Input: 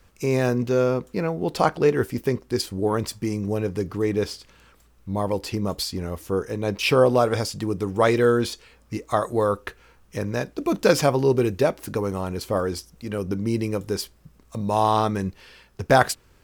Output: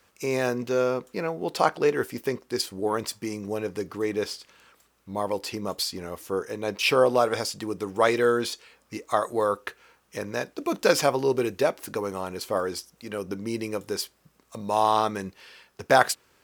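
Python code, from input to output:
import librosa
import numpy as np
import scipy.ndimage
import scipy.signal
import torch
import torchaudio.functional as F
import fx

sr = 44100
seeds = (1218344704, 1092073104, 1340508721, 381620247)

y = fx.highpass(x, sr, hz=470.0, slope=6)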